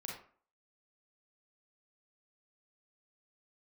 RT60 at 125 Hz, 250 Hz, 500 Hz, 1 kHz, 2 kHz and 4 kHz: 0.40, 0.45, 0.45, 0.50, 0.40, 0.30 s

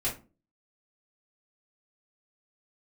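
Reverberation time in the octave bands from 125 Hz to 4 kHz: 0.40, 0.45, 0.35, 0.30, 0.25, 0.20 s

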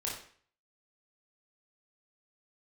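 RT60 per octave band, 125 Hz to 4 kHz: 0.55, 0.50, 0.50, 0.50, 0.50, 0.45 s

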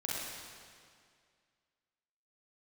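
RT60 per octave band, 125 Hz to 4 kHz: 2.2, 2.1, 2.2, 2.1, 2.0, 1.9 s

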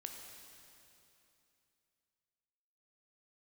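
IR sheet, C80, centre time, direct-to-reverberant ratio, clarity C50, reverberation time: 4.5 dB, 79 ms, 2.5 dB, 3.5 dB, 2.9 s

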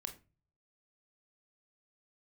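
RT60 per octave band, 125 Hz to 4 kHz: 0.80, 0.45, 0.35, 0.30, 0.25, 0.20 s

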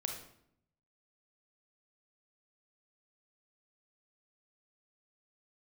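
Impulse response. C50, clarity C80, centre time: 4.5 dB, 8.5 dB, 29 ms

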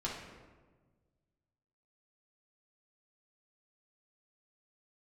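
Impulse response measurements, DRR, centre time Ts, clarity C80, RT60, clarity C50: -6.0 dB, 56 ms, 5.5 dB, 1.4 s, 2.5 dB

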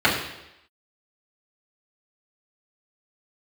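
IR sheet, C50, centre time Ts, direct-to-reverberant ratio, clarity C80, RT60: 5.0 dB, 39 ms, -8.5 dB, 7.5 dB, 0.85 s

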